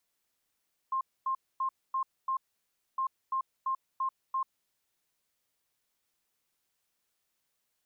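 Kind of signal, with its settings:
beeps in groups sine 1,060 Hz, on 0.09 s, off 0.25 s, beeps 5, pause 0.61 s, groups 2, −27.5 dBFS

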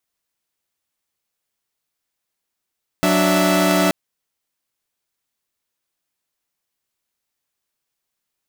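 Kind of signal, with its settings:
held notes F#3/D4/E5 saw, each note −16 dBFS 0.88 s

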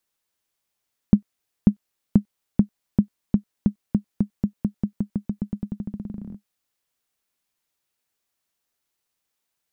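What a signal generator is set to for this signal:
bouncing ball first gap 0.54 s, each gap 0.9, 205 Hz, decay 96 ms −2 dBFS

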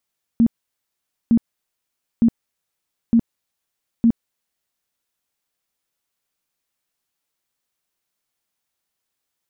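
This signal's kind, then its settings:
tone bursts 231 Hz, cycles 15, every 0.91 s, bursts 5, −10 dBFS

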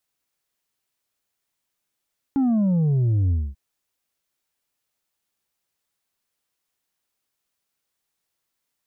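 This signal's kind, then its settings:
bass drop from 280 Hz, over 1.19 s, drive 4 dB, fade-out 0.24 s, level −17.5 dB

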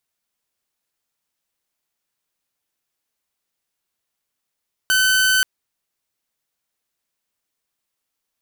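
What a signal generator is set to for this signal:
tone saw 1,520 Hz −11.5 dBFS 0.53 s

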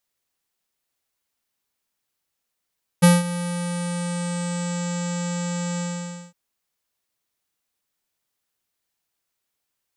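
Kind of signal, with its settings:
subtractive voice square F3 24 dB per octave, low-pass 7,600 Hz, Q 8.3, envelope 0.5 octaves, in 1.81 s, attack 17 ms, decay 0.19 s, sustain −16 dB, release 0.53 s, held 2.78 s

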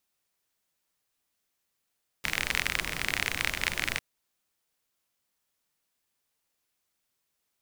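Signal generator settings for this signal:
rain-like ticks over hiss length 1.75 s, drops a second 38, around 2,100 Hz, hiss −7 dB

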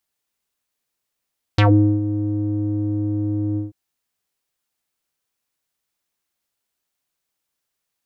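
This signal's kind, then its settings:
subtractive voice square G#2 12 dB per octave, low-pass 320 Hz, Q 3.4, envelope 4 octaves, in 0.13 s, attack 4.6 ms, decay 0.42 s, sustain −12.5 dB, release 0.15 s, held 1.99 s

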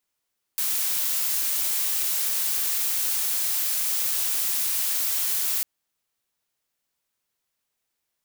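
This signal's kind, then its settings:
noise blue, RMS −25 dBFS 5.05 s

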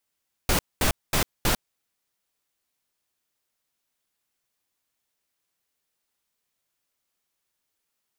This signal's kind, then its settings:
noise bursts pink, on 0.10 s, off 0.22 s, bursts 4, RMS −21.5 dBFS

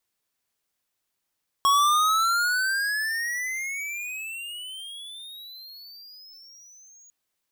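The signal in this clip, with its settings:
pitch glide with a swell square, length 5.45 s, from 1,100 Hz, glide +31.5 semitones, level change −33 dB, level −18.5 dB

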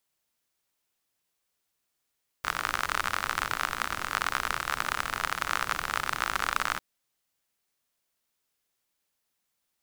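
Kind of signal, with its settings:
rain-like ticks over hiss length 4.35 s, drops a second 53, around 1,300 Hz, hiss −11.5 dB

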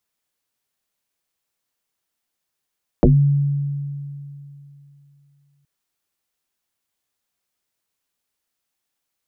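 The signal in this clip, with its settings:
two-operator FM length 2.62 s, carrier 142 Hz, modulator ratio 0.77, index 5.6, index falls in 0.21 s exponential, decay 2.97 s, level −8 dB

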